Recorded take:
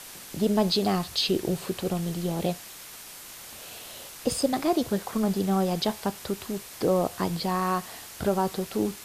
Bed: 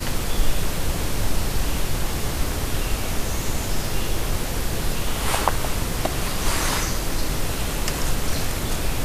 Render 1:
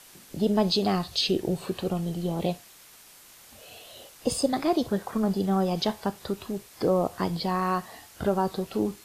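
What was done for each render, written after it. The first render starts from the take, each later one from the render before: noise print and reduce 8 dB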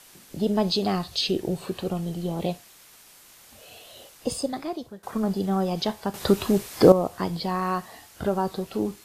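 4.14–5.03 s: fade out, to -21 dB; 6.14–6.92 s: gain +11 dB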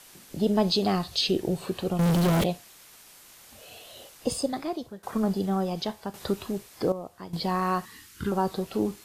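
1.99–2.44 s: waveshaping leveller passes 5; 5.22–7.33 s: fade out quadratic, to -13.5 dB; 7.85–8.32 s: Butterworth band-stop 660 Hz, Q 0.81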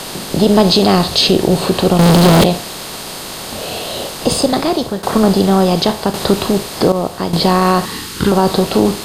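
spectral levelling over time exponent 0.6; loudness maximiser +12 dB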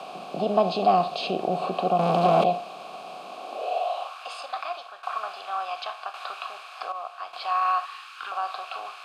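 vowel filter a; high-pass sweep 170 Hz -> 1.5 kHz, 3.23–4.22 s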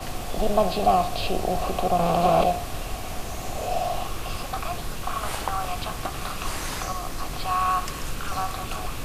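add bed -8.5 dB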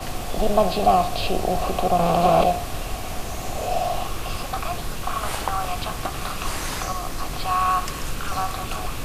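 trim +2.5 dB

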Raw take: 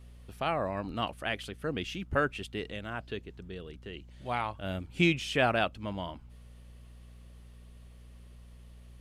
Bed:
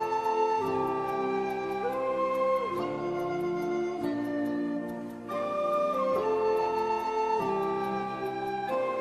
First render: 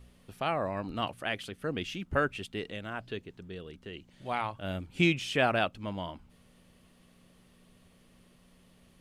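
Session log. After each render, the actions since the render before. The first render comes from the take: de-hum 60 Hz, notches 2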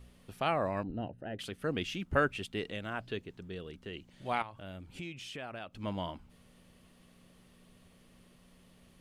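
0.83–1.39 s: boxcar filter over 39 samples; 4.42–5.76 s: compression 3:1, threshold -45 dBFS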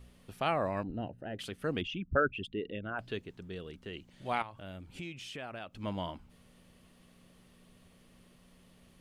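1.81–2.99 s: resonances exaggerated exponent 2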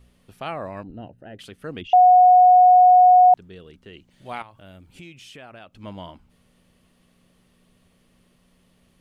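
1.93–3.34 s: bleep 729 Hz -8.5 dBFS; 4.10–5.39 s: treble shelf 8.9 kHz +6.5 dB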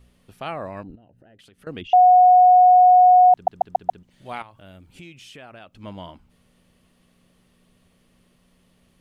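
0.95–1.67 s: compression 16:1, threshold -48 dBFS; 3.33 s: stutter in place 0.14 s, 5 plays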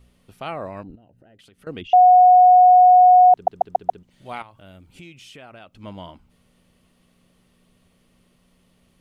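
dynamic bell 420 Hz, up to +7 dB, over -35 dBFS, Q 2; band-stop 1.7 kHz, Q 20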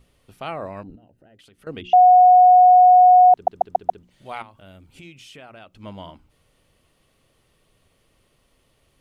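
hum notches 60/120/180/240/300/360 Hz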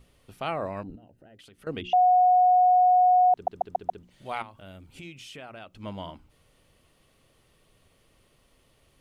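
peak limiter -15.5 dBFS, peak gain reduction 8 dB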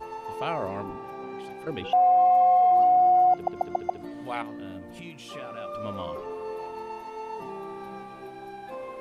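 add bed -8.5 dB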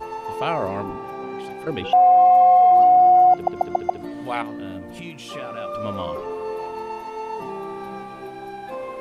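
trim +6 dB

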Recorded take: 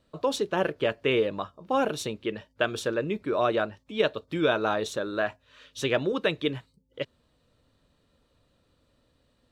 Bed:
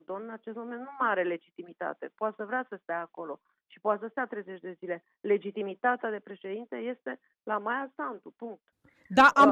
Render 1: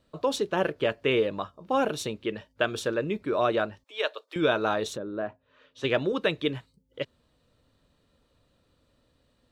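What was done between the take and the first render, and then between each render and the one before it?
3.84–4.36 s: Bessel high-pass 670 Hz, order 8; 4.96–5.83 s: band-pass filter 140 Hz -> 710 Hz, Q 0.5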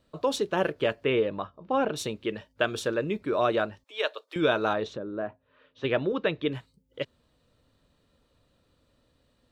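1.04–1.96 s: distance through air 200 m; 4.73–6.52 s: distance through air 200 m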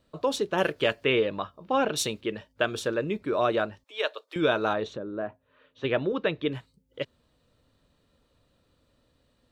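0.58–2.21 s: treble shelf 2 kHz +8.5 dB; 4.72–6.13 s: band-stop 5.1 kHz, Q 11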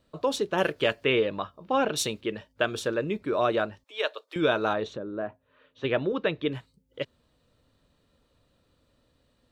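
no audible change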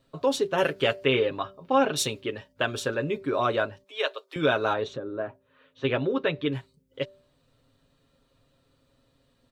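comb 7.4 ms, depth 61%; de-hum 194.6 Hz, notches 3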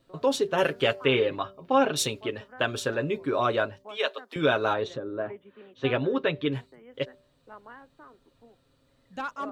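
add bed -16 dB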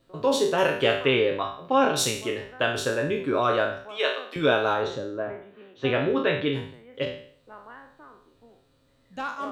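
spectral sustain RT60 0.56 s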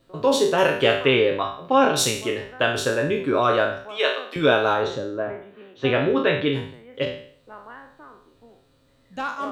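trim +3.5 dB

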